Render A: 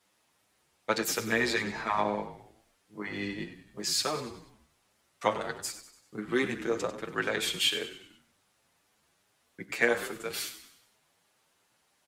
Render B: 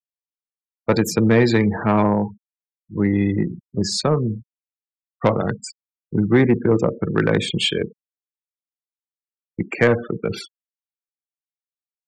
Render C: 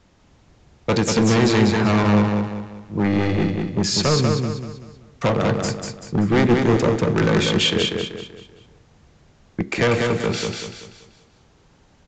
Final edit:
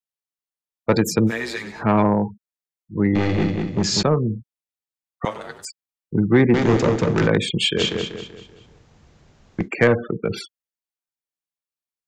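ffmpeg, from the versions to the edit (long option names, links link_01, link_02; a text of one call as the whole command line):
ffmpeg -i take0.wav -i take1.wav -i take2.wav -filter_complex "[0:a]asplit=2[link_01][link_02];[2:a]asplit=3[link_03][link_04][link_05];[1:a]asplit=6[link_06][link_07][link_08][link_09][link_10][link_11];[link_06]atrim=end=1.32[link_12];[link_01]atrim=start=1.26:end=1.84[link_13];[link_07]atrim=start=1.78:end=3.152[link_14];[link_03]atrim=start=3.148:end=4.032[link_15];[link_08]atrim=start=4.028:end=5.252[link_16];[link_02]atrim=start=5.248:end=5.652[link_17];[link_09]atrim=start=5.648:end=6.542[link_18];[link_04]atrim=start=6.538:end=7.272[link_19];[link_10]atrim=start=7.268:end=7.8[link_20];[link_05]atrim=start=7.76:end=9.69[link_21];[link_11]atrim=start=9.65[link_22];[link_12][link_13]acrossfade=duration=0.06:curve1=tri:curve2=tri[link_23];[link_23][link_14]acrossfade=duration=0.06:curve1=tri:curve2=tri[link_24];[link_24][link_15]acrossfade=duration=0.004:curve1=hsin:curve2=hsin[link_25];[link_25][link_16]acrossfade=duration=0.004:curve1=hsin:curve2=hsin[link_26];[link_26][link_17]acrossfade=duration=0.004:curve1=hsin:curve2=hsin[link_27];[link_27][link_18]acrossfade=duration=0.004:curve1=hsin:curve2=hsin[link_28];[link_28][link_19]acrossfade=duration=0.004:curve1=hsin:curve2=hsin[link_29];[link_29][link_20]acrossfade=duration=0.004:curve1=hsin:curve2=hsin[link_30];[link_30][link_21]acrossfade=duration=0.04:curve1=tri:curve2=tri[link_31];[link_31][link_22]acrossfade=duration=0.04:curve1=tri:curve2=tri" out.wav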